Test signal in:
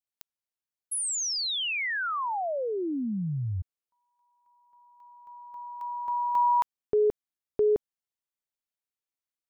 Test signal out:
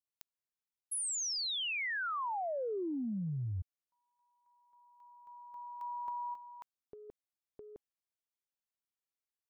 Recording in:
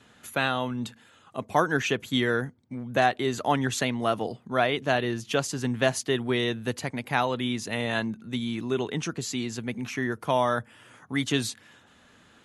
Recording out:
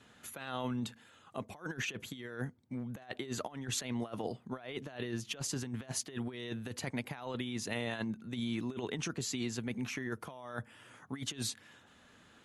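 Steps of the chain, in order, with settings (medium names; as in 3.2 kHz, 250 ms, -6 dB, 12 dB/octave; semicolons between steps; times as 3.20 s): compressor with a negative ratio -30 dBFS, ratio -0.5; trim -8 dB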